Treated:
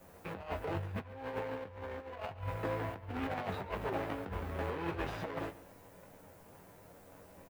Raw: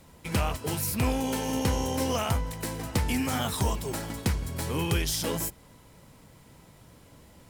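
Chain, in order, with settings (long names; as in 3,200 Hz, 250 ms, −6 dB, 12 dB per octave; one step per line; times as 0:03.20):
running median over 41 samples
three-way crossover with the lows and the highs turned down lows −17 dB, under 540 Hz, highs −20 dB, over 3,100 Hz
background noise blue −77 dBFS
0:00.73–0:03.13: parametric band 96 Hz +15 dB 0.21 octaves
mains-hum notches 50/100 Hz
ambience of single reflections 11 ms −4.5 dB, 21 ms −4 dB
compressor whose output falls as the input rises −42 dBFS, ratio −0.5
single-tap delay 139 ms −18 dB
level +4 dB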